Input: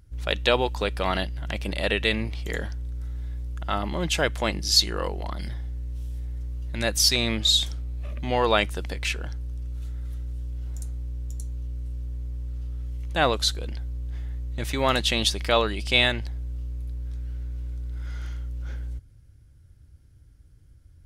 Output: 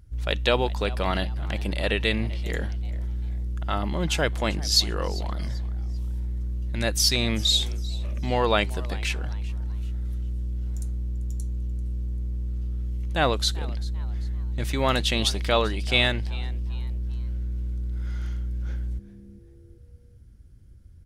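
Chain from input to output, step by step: bass shelf 220 Hz +5 dB; frequency-shifting echo 391 ms, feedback 35%, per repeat +140 Hz, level -20 dB; trim -1.5 dB

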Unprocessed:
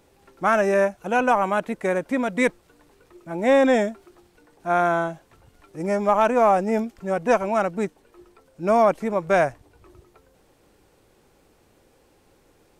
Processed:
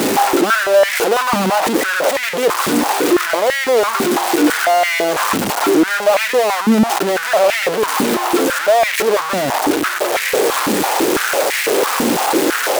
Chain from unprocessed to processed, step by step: one-bit comparator; step-sequenced high-pass 6 Hz 230–2000 Hz; trim +5.5 dB

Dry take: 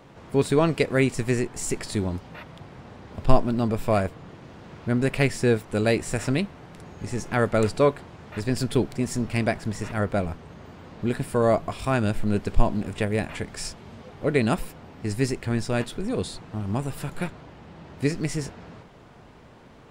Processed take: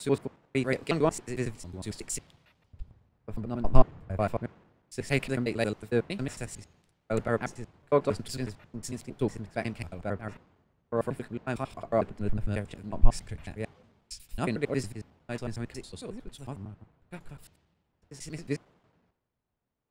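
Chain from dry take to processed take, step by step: slices played last to first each 91 ms, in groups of 6; three bands expanded up and down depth 100%; trim -8.5 dB

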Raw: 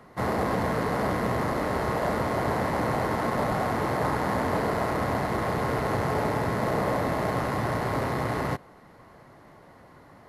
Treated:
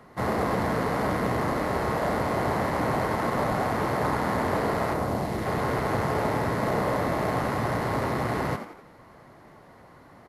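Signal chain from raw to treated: 4.93–5.45 s: peaking EQ 2.9 kHz -> 920 Hz -8 dB 1.7 oct; frequency-shifting echo 87 ms, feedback 41%, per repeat +91 Hz, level -10 dB

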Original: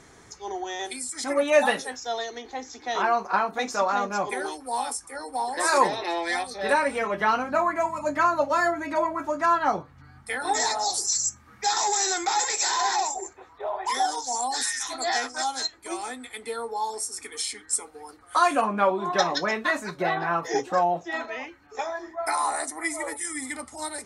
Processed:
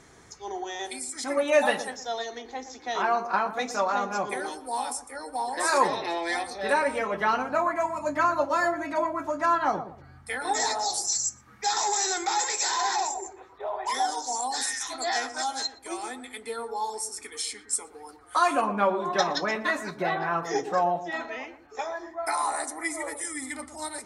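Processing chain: filtered feedback delay 118 ms, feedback 32%, low-pass 820 Hz, level -9 dB; trim -2 dB

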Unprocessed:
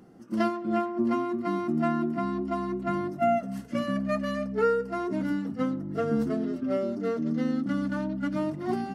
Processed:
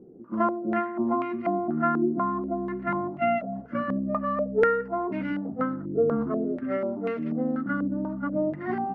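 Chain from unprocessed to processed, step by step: step-sequenced low-pass 4.1 Hz 420–2400 Hz; trim -1.5 dB

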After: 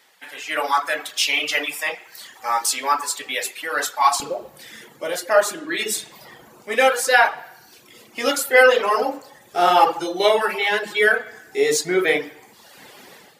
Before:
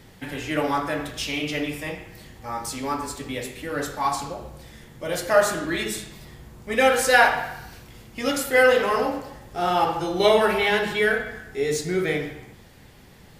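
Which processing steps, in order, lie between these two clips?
reverb removal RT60 0.91 s; level rider gain up to 14 dB; high-pass 830 Hz 12 dB/octave, from 4.20 s 380 Hz; trim -1 dB

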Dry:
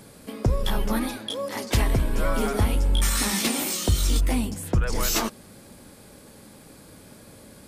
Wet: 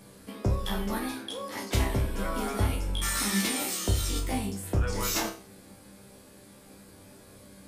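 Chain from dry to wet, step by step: chord resonator C2 fifth, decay 0.37 s; trim +7 dB

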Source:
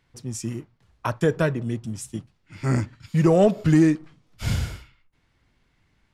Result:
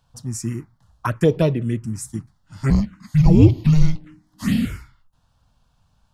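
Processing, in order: 2.70–4.65 s: frequency shift -310 Hz; touch-sensitive phaser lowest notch 350 Hz, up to 1.6 kHz, full sweep at -17.5 dBFS; trim +5.5 dB

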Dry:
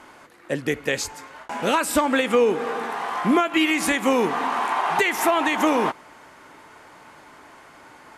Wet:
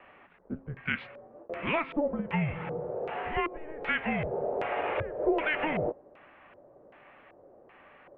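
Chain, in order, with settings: mistuned SSB -310 Hz 460–3500 Hz; de-hum 268.2 Hz, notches 10; LFO low-pass square 1.3 Hz 510–2500 Hz; trim -9 dB

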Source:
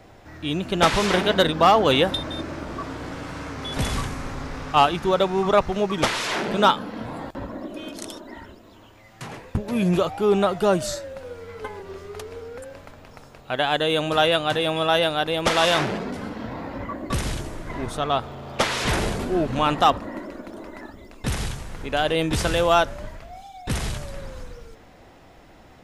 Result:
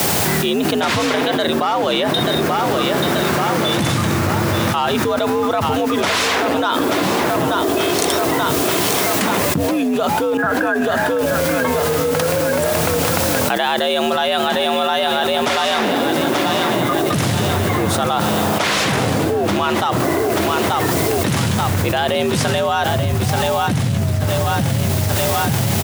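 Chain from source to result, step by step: 22.95–24.25 s: bass shelf 150 Hz +9.5 dB; in parallel at -7.5 dB: word length cut 6-bit, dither triangular; 10.37–11.19 s: on the sum: four-pole ladder low-pass 1.6 kHz, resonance 90%; on a send: feedback delay 883 ms, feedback 50%, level -12.5 dB; on the sum: frequency shift +73 Hz; level flattener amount 100%; trim -7.5 dB

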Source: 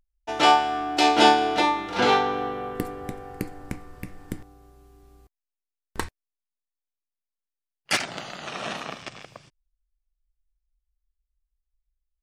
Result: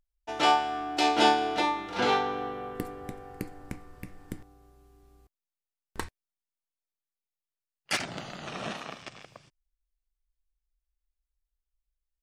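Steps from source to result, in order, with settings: 7.99–8.72 s: bass shelf 330 Hz +9 dB; trim -5.5 dB

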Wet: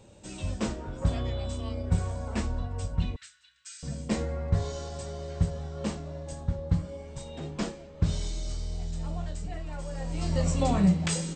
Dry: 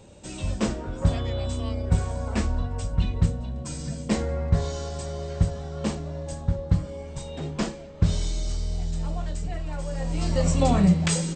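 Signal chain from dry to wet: flange 0.41 Hz, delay 8.2 ms, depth 8.2 ms, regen +72%; 3.16–3.83 s: elliptic high-pass 1.5 kHz, stop band 50 dB

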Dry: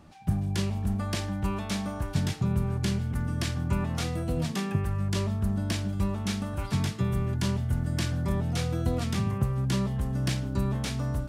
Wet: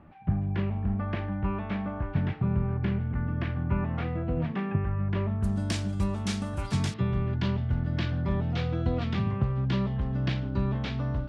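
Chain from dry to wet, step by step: low-pass 2.4 kHz 24 dB/octave, from 5.43 s 10 kHz, from 6.94 s 3.8 kHz

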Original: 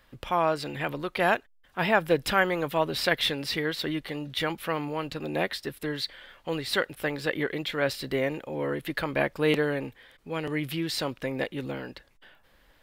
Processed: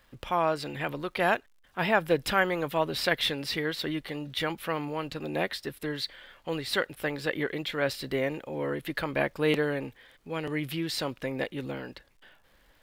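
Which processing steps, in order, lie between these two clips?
crackle 160 per s -55 dBFS; trim -1.5 dB

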